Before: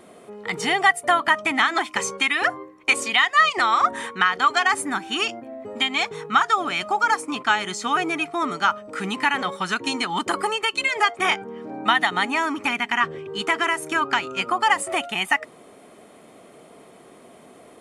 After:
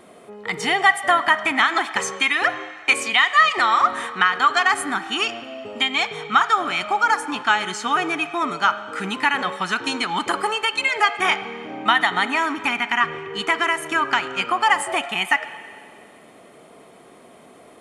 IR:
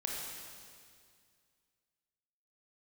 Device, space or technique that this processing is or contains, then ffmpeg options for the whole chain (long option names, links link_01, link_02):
filtered reverb send: -filter_complex "[0:a]asplit=2[link_01][link_02];[link_02]highpass=560,lowpass=4700[link_03];[1:a]atrim=start_sample=2205[link_04];[link_03][link_04]afir=irnorm=-1:irlink=0,volume=-11dB[link_05];[link_01][link_05]amix=inputs=2:normalize=0"